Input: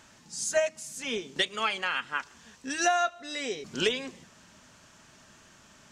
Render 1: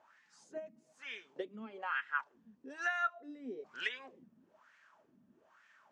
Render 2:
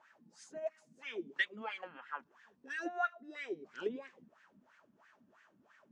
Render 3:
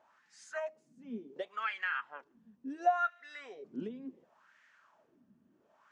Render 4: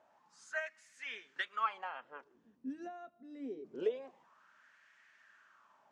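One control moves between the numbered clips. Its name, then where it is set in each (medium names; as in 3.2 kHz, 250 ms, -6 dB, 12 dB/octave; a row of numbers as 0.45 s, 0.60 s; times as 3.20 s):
wah-wah, rate: 1.1 Hz, 3 Hz, 0.7 Hz, 0.25 Hz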